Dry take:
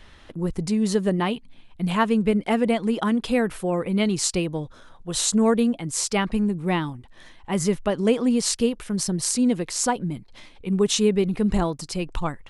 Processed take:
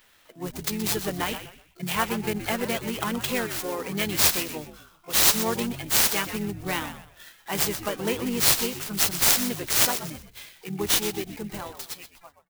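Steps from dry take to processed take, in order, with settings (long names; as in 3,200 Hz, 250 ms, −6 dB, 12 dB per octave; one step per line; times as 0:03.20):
fade-out on the ending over 2.03 s
RIAA equalisation recording
noise reduction from a noise print of the clip's start 10 dB
dynamic equaliser 570 Hz, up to −3 dB, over −37 dBFS, Q 0.81
in parallel at +0.5 dB: downward compressor 6 to 1, threshold −27 dBFS, peak gain reduction 17 dB
on the sum: pitch-shifted copies added −4 semitones −7 dB, +12 semitones −13 dB
on a send: echo with shifted repeats 124 ms, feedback 31%, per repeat −98 Hz, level −11 dB
on the sum: converter with an unsteady clock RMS 0.037 ms
level −6.5 dB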